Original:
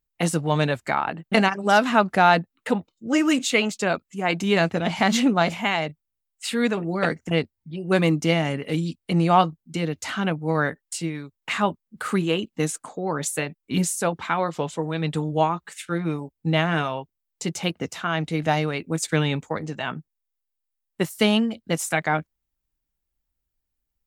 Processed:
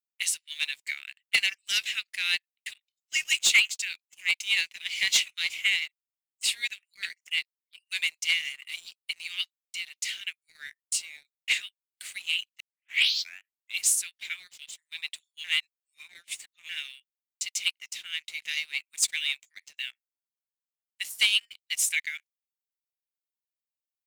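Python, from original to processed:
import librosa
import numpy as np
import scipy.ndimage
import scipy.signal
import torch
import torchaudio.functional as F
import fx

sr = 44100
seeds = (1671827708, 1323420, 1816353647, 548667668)

y = fx.edit(x, sr, fx.tape_start(start_s=12.6, length_s=1.2),
    fx.reverse_span(start_s=15.44, length_s=1.25), tone=tone)
y = scipy.signal.sosfilt(scipy.signal.butter(8, 2100.0, 'highpass', fs=sr, output='sos'), y)
y = fx.leveller(y, sr, passes=2)
y = fx.upward_expand(y, sr, threshold_db=-32.0, expansion=1.5)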